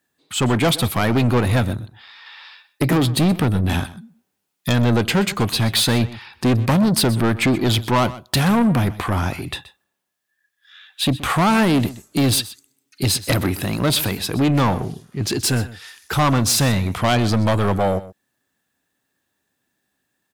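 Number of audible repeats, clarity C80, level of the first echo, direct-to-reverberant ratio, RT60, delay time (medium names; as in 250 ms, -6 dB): 1, no reverb, -17.0 dB, no reverb, no reverb, 126 ms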